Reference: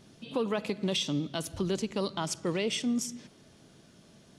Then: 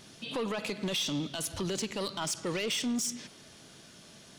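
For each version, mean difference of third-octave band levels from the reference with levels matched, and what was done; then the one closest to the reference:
5.5 dB: tilt shelving filter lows −5 dB, about 820 Hz
brickwall limiter −23.5 dBFS, peak gain reduction 8 dB
soft clipping −30.5 dBFS, distortion −14 dB
level +4.5 dB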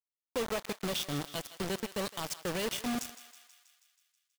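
11.5 dB: comb filter 1.7 ms, depth 31%
bit reduction 5 bits
feedback echo with a high-pass in the loop 161 ms, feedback 64%, high-pass 820 Hz, level −13 dB
level −5 dB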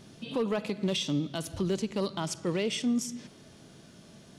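2.0 dB: in parallel at −0.5 dB: downward compressor, threshold −40 dBFS, peak gain reduction 14 dB
on the sum: harmonic and percussive parts rebalanced percussive −4 dB
hard clipping −21 dBFS, distortion −28 dB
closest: third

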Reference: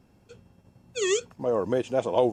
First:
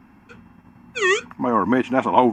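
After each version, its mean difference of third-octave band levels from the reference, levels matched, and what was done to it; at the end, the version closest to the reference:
4.0 dB: octave-band graphic EQ 125/250/500/1,000/2,000/4,000/8,000 Hz −5/+11/−12/+11/+10/−6/−8 dB
level +6 dB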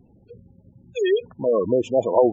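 7.0 dB: gate on every frequency bin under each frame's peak −15 dB strong
level +6 dB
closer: first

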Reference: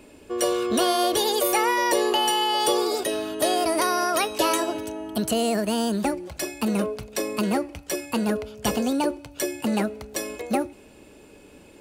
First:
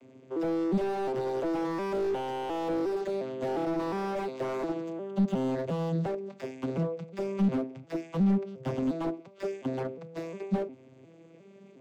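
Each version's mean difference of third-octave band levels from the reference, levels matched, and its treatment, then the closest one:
10.0 dB: vocoder with an arpeggio as carrier major triad, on C3, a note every 356 ms
in parallel at −0.5 dB: brickwall limiter −19.5 dBFS, peak gain reduction 9.5 dB
on the sum: slew-rate limiting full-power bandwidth 54 Hz
level −8.5 dB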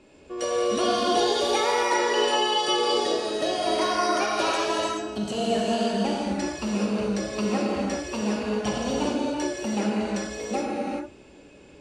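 7.5 dB: low-pass filter 7,100 Hz 24 dB per octave
mains-hum notches 50/100 Hz
reverb whose tail is shaped and stops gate 460 ms flat, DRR −5 dB
level −6.5 dB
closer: second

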